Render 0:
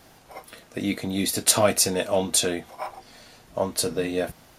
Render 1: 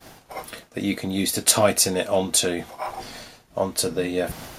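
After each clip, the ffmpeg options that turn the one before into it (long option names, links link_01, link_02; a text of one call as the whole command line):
ffmpeg -i in.wav -af "agate=range=-33dB:threshold=-45dB:ratio=3:detection=peak,areverse,acompressor=mode=upward:threshold=-27dB:ratio=2.5,areverse,volume=1.5dB" out.wav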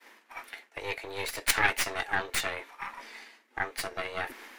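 ffmpeg -i in.wav -af "afreqshift=200,aeval=exprs='0.794*(cos(1*acos(clip(val(0)/0.794,-1,1)))-cos(1*PI/2))+0.355*(cos(3*acos(clip(val(0)/0.794,-1,1)))-cos(3*PI/2))+0.0708*(cos(4*acos(clip(val(0)/0.794,-1,1)))-cos(4*PI/2))+0.1*(cos(5*acos(clip(val(0)/0.794,-1,1)))-cos(5*PI/2))+0.0158*(cos(8*acos(clip(val(0)/0.794,-1,1)))-cos(8*PI/2))':channel_layout=same,equalizer=frequency=2000:width_type=o:width=1.3:gain=15,volume=-5dB" out.wav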